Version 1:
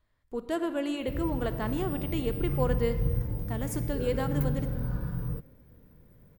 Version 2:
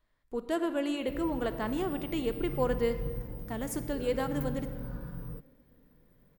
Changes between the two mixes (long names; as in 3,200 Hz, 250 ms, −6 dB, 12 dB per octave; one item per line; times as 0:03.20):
background −5.0 dB
master: add parametric band 88 Hz −11.5 dB 0.81 octaves